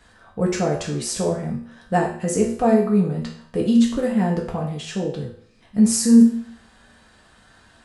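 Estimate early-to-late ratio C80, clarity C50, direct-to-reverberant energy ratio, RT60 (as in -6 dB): 10.0 dB, 6.0 dB, -3.0 dB, 0.55 s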